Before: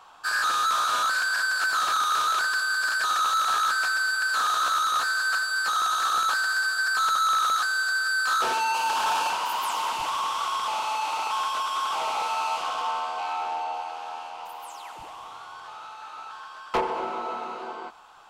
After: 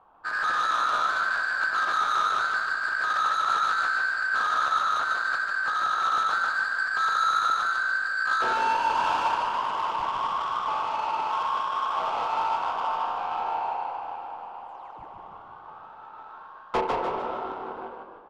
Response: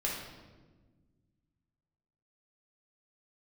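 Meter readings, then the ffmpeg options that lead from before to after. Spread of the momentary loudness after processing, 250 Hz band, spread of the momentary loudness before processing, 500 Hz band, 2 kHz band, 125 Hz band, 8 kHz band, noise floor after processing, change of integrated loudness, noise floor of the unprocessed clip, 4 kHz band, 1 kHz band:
18 LU, +2.0 dB, 17 LU, +1.5 dB, -1.0 dB, no reading, -13.0 dB, -46 dBFS, -1.0 dB, -42 dBFS, -7.0 dB, 0.0 dB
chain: -filter_complex "[0:a]adynamicsmooth=sensitivity=1:basefreq=810,asplit=6[s0][s1][s2][s3][s4][s5];[s1]adelay=150,afreqshift=52,volume=0.631[s6];[s2]adelay=300,afreqshift=104,volume=0.266[s7];[s3]adelay=450,afreqshift=156,volume=0.111[s8];[s4]adelay=600,afreqshift=208,volume=0.0468[s9];[s5]adelay=750,afreqshift=260,volume=0.0197[s10];[s0][s6][s7][s8][s9][s10]amix=inputs=6:normalize=0,asplit=2[s11][s12];[1:a]atrim=start_sample=2205,adelay=141[s13];[s12][s13]afir=irnorm=-1:irlink=0,volume=0.224[s14];[s11][s14]amix=inputs=2:normalize=0"

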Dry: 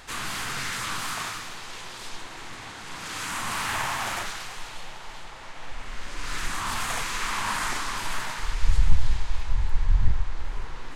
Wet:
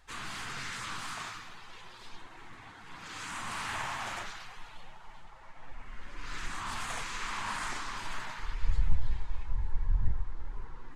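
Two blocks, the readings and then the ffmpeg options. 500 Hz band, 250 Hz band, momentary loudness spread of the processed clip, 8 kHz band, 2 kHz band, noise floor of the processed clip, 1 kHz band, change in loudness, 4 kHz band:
-9.0 dB, -8.0 dB, 16 LU, -11.0 dB, -8.0 dB, -50 dBFS, -7.5 dB, -7.5 dB, -9.5 dB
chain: -af "afftdn=nr=12:nf=-41,volume=0.422"

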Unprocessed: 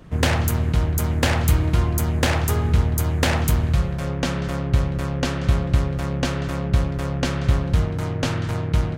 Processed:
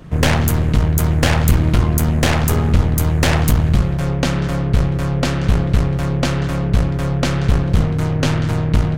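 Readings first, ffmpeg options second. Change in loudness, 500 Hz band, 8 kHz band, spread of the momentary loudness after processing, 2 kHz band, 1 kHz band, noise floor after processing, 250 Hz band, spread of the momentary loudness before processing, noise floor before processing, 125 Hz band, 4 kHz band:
+5.0 dB, +4.5 dB, +4.5 dB, 4 LU, +4.0 dB, +4.0 dB, -20 dBFS, +6.5 dB, 5 LU, -26 dBFS, +5.0 dB, +4.0 dB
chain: -af "equalizer=f=150:t=o:w=0.27:g=6.5,aeval=exprs='0.631*(cos(1*acos(clip(val(0)/0.631,-1,1)))-cos(1*PI/2))+0.178*(cos(4*acos(clip(val(0)/0.631,-1,1)))-cos(4*PI/2))+0.1*(cos(5*acos(clip(val(0)/0.631,-1,1)))-cos(5*PI/2))':c=same"

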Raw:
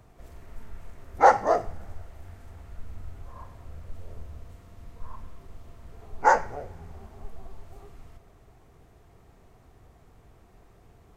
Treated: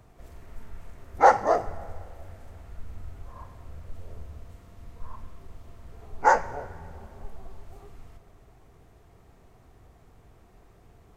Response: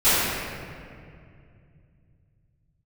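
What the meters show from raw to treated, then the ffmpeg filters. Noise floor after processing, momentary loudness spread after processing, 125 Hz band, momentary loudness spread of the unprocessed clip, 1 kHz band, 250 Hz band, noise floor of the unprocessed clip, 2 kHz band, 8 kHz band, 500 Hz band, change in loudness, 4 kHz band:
-56 dBFS, 21 LU, 0.0 dB, 21 LU, 0.0 dB, 0.0 dB, -57 dBFS, 0.0 dB, 0.0 dB, 0.0 dB, -0.5 dB, 0.0 dB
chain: -filter_complex "[0:a]asplit=2[s0][s1];[1:a]atrim=start_sample=2205,adelay=110[s2];[s1][s2]afir=irnorm=-1:irlink=0,volume=0.00891[s3];[s0][s3]amix=inputs=2:normalize=0"

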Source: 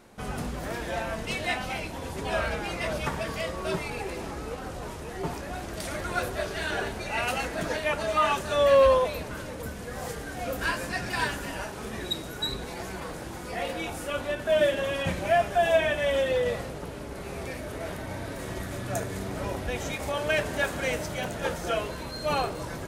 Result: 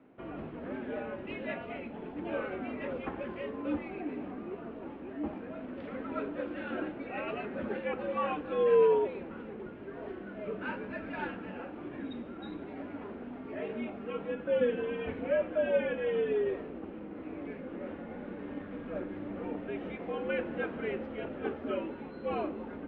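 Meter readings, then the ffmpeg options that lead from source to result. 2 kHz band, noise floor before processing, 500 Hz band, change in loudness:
-11.0 dB, -38 dBFS, -5.0 dB, -6.5 dB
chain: -af "highpass=f=180:t=q:w=0.5412,highpass=f=180:t=q:w=1.307,lowpass=f=2800:t=q:w=0.5176,lowpass=f=2800:t=q:w=0.7071,lowpass=f=2800:t=q:w=1.932,afreqshift=-88,equalizer=f=125:t=o:w=1:g=-10,equalizer=f=250:t=o:w=1:g=10,equalizer=f=1000:t=o:w=1:g=-3,equalizer=f=2000:t=o:w=1:g=-5,volume=0.501"

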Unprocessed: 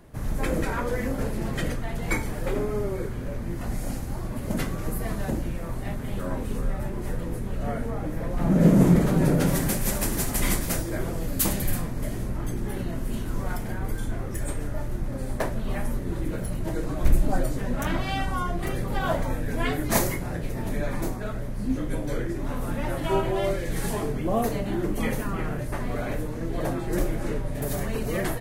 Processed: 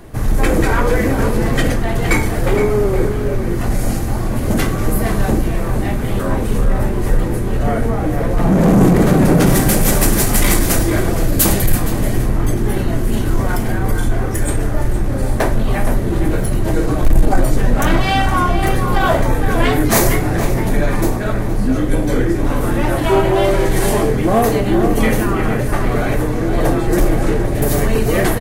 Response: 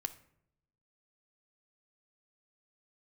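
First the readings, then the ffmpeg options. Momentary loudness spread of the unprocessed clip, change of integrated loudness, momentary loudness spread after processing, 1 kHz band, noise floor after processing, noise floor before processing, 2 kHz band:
8 LU, +11.5 dB, 6 LU, +13.0 dB, -19 dBFS, -32 dBFS, +12.5 dB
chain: -filter_complex "[0:a]asoftclip=type=tanh:threshold=0.112,asplit=2[s0][s1];[s1]adelay=466.5,volume=0.447,highshelf=f=4000:g=-10.5[s2];[s0][s2]amix=inputs=2:normalize=0,asplit=2[s3][s4];[1:a]atrim=start_sample=2205[s5];[s4][s5]afir=irnorm=-1:irlink=0,volume=2.51[s6];[s3][s6]amix=inputs=2:normalize=0,volume=1.41"

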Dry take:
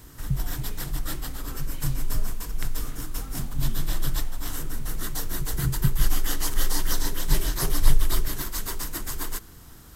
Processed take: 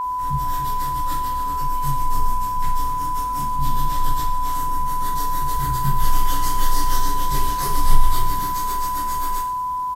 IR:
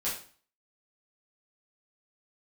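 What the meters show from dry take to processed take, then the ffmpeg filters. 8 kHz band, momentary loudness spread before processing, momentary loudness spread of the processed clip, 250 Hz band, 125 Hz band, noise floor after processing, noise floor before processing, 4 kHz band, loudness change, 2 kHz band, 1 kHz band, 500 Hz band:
+0.5 dB, 9 LU, 2 LU, +1.0 dB, +1.5 dB, -24 dBFS, -46 dBFS, +1.0 dB, +7.0 dB, +1.0 dB, +22.5 dB, +0.5 dB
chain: -filter_complex "[0:a]asplit=6[s0][s1][s2][s3][s4][s5];[s1]adelay=111,afreqshift=-62,volume=0.178[s6];[s2]adelay=222,afreqshift=-124,volume=0.0923[s7];[s3]adelay=333,afreqshift=-186,volume=0.0479[s8];[s4]adelay=444,afreqshift=-248,volume=0.0251[s9];[s5]adelay=555,afreqshift=-310,volume=0.013[s10];[s0][s6][s7][s8][s9][s10]amix=inputs=6:normalize=0[s11];[1:a]atrim=start_sample=2205[s12];[s11][s12]afir=irnorm=-1:irlink=0,aeval=exprs='val(0)+0.141*sin(2*PI*1000*n/s)':c=same,volume=0.596"

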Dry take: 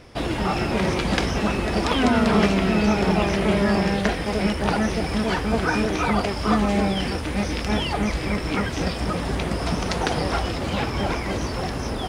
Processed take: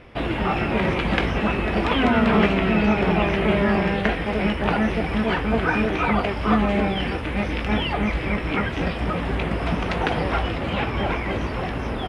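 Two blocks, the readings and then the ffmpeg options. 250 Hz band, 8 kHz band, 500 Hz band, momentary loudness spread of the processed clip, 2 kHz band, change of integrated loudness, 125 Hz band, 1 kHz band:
0.0 dB, under -10 dB, +0.5 dB, 6 LU, +2.5 dB, +0.5 dB, 0.0 dB, +1.0 dB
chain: -filter_complex "[0:a]highshelf=f=3900:t=q:w=1.5:g=-12,asplit=2[s0][s1];[s1]adelay=18,volume=0.251[s2];[s0][s2]amix=inputs=2:normalize=0"

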